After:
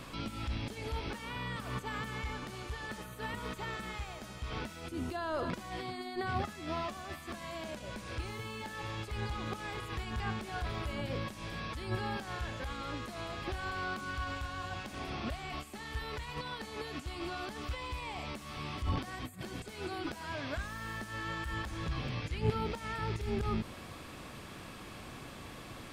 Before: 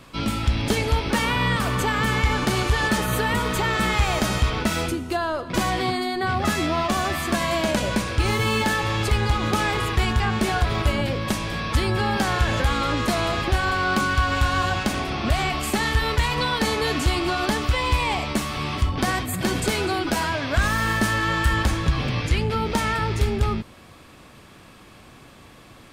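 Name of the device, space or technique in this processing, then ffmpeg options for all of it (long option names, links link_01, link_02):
de-esser from a sidechain: -filter_complex "[0:a]asplit=2[link_01][link_02];[link_02]highpass=6800,apad=whole_len=1143145[link_03];[link_01][link_03]sidechaincompress=threshold=-57dB:ratio=10:attack=1.7:release=63,volume=1dB"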